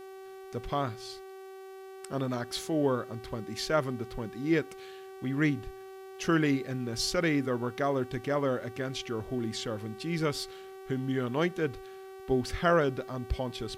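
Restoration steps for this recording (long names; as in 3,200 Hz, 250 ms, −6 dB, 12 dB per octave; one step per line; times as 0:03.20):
hum removal 382.8 Hz, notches 22
downward expander −38 dBFS, range −21 dB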